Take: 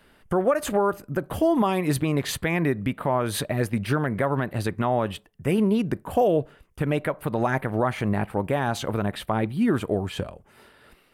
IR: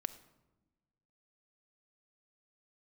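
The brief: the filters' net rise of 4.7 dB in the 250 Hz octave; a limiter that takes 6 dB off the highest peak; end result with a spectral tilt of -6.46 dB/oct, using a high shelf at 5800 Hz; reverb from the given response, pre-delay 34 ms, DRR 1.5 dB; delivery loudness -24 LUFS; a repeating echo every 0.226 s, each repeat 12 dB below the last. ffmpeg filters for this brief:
-filter_complex "[0:a]equalizer=f=250:t=o:g=6,highshelf=f=5.8k:g=-4.5,alimiter=limit=-14.5dB:level=0:latency=1,aecho=1:1:226|452|678:0.251|0.0628|0.0157,asplit=2[a][b];[1:a]atrim=start_sample=2205,adelay=34[c];[b][c]afir=irnorm=-1:irlink=0,volume=-0.5dB[d];[a][d]amix=inputs=2:normalize=0,volume=-1dB"

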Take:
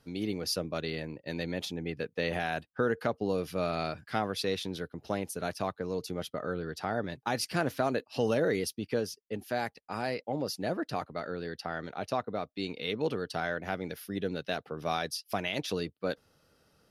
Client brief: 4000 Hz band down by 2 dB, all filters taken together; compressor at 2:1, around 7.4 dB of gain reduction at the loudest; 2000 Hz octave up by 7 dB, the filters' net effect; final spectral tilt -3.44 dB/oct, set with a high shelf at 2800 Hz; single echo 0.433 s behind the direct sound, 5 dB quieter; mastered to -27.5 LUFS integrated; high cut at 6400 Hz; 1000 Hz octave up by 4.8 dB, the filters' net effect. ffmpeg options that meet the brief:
-af "lowpass=6.4k,equalizer=f=1k:t=o:g=5,equalizer=f=2k:t=o:g=7.5,highshelf=f=2.8k:g=4,equalizer=f=4k:t=o:g=-7.5,acompressor=threshold=-35dB:ratio=2,aecho=1:1:433:0.562,volume=8dB"

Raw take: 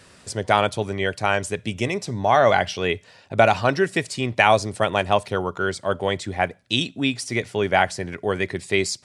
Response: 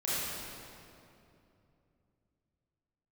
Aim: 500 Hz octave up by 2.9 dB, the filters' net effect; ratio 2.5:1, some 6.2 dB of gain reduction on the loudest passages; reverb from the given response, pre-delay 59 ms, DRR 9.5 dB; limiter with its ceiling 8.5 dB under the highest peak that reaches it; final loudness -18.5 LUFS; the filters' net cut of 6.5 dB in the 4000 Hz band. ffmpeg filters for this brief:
-filter_complex "[0:a]equalizer=f=500:t=o:g=4,equalizer=f=4k:t=o:g=-9,acompressor=threshold=-18dB:ratio=2.5,alimiter=limit=-12dB:level=0:latency=1,asplit=2[a][b];[1:a]atrim=start_sample=2205,adelay=59[c];[b][c]afir=irnorm=-1:irlink=0,volume=-17.5dB[d];[a][d]amix=inputs=2:normalize=0,volume=7dB"

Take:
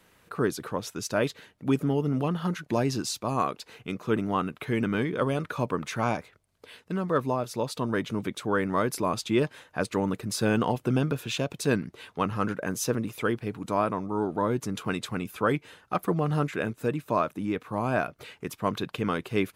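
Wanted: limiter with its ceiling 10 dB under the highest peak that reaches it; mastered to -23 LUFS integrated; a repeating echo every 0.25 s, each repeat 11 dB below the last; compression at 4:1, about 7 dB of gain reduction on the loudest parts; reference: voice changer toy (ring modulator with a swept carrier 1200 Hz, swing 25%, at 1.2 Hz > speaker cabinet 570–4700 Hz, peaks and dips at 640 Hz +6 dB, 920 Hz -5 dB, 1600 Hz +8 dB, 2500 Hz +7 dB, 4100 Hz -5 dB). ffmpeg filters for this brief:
-af "acompressor=threshold=-28dB:ratio=4,alimiter=level_in=0.5dB:limit=-24dB:level=0:latency=1,volume=-0.5dB,aecho=1:1:250|500|750:0.282|0.0789|0.0221,aeval=exprs='val(0)*sin(2*PI*1200*n/s+1200*0.25/1.2*sin(2*PI*1.2*n/s))':c=same,highpass=570,equalizer=f=640:t=q:w=4:g=6,equalizer=f=920:t=q:w=4:g=-5,equalizer=f=1.6k:t=q:w=4:g=8,equalizer=f=2.5k:t=q:w=4:g=7,equalizer=f=4.1k:t=q:w=4:g=-5,lowpass=f=4.7k:w=0.5412,lowpass=f=4.7k:w=1.3066,volume=11.5dB"

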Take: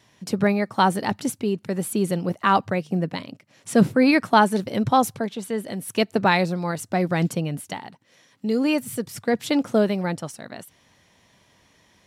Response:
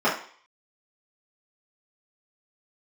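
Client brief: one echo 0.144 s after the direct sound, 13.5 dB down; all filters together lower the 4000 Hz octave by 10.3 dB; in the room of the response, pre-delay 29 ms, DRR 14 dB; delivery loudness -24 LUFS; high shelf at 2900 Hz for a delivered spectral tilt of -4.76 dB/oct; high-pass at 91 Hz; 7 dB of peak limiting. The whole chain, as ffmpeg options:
-filter_complex "[0:a]highpass=91,highshelf=f=2.9k:g=-6.5,equalizer=f=4k:t=o:g=-8.5,alimiter=limit=-12.5dB:level=0:latency=1,aecho=1:1:144:0.211,asplit=2[a][b];[1:a]atrim=start_sample=2205,adelay=29[c];[b][c]afir=irnorm=-1:irlink=0,volume=-31.5dB[d];[a][d]amix=inputs=2:normalize=0,volume=0.5dB"

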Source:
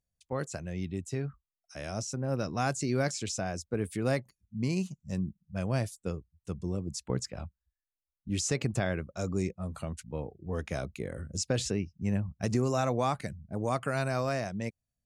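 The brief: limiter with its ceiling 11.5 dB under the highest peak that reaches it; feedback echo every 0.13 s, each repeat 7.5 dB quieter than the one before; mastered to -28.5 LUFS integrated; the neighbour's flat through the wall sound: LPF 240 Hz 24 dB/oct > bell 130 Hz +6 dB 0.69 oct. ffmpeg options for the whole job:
-af "alimiter=level_in=4.5dB:limit=-24dB:level=0:latency=1,volume=-4.5dB,lowpass=f=240:w=0.5412,lowpass=f=240:w=1.3066,equalizer=f=130:t=o:w=0.69:g=6,aecho=1:1:130|260|390|520|650:0.422|0.177|0.0744|0.0312|0.0131,volume=10dB"

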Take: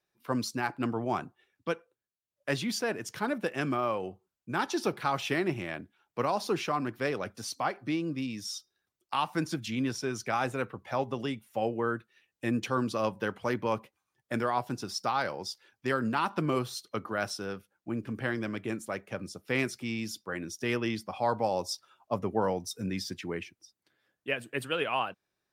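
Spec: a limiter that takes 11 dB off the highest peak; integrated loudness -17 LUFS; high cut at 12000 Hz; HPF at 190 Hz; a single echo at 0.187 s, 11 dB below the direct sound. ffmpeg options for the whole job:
-af "highpass=190,lowpass=12k,alimiter=level_in=2dB:limit=-24dB:level=0:latency=1,volume=-2dB,aecho=1:1:187:0.282,volume=20dB"

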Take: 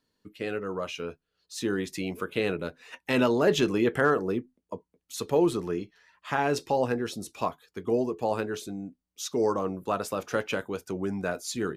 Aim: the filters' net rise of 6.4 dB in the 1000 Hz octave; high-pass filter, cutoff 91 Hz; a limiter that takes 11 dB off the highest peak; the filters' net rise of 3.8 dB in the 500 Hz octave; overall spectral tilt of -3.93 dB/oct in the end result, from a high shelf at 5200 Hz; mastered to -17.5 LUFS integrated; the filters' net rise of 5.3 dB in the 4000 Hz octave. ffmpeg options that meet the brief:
-af "highpass=91,equalizer=f=500:t=o:g=3,equalizer=f=1k:t=o:g=7,equalizer=f=4k:t=o:g=4.5,highshelf=f=5.2k:g=4.5,volume=12dB,alimiter=limit=-5.5dB:level=0:latency=1"

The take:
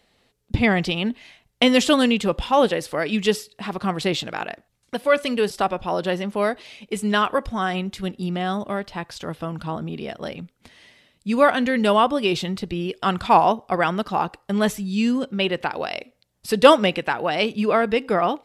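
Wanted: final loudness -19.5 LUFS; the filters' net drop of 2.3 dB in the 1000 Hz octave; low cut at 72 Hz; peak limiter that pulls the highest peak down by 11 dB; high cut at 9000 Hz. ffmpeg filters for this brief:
-af "highpass=72,lowpass=9k,equalizer=f=1k:t=o:g=-3,volume=5.5dB,alimiter=limit=-7dB:level=0:latency=1"

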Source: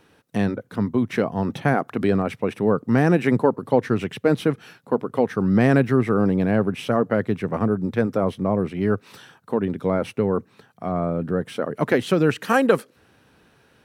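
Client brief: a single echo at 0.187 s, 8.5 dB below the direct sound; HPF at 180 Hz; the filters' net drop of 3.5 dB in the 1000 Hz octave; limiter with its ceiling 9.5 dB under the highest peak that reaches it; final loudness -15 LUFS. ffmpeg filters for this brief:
-af "highpass=180,equalizer=f=1k:t=o:g=-5,alimiter=limit=-14.5dB:level=0:latency=1,aecho=1:1:187:0.376,volume=11dB"

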